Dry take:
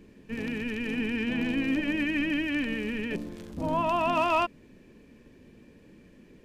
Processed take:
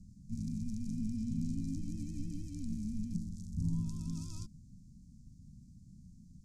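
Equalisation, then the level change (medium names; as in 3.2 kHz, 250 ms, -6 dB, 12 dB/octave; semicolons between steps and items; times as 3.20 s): inverse Chebyshev band-stop 390–3000 Hz, stop band 50 dB; low-pass 4.8 kHz 12 dB/octave; bass shelf 350 Hz -7 dB; +11.5 dB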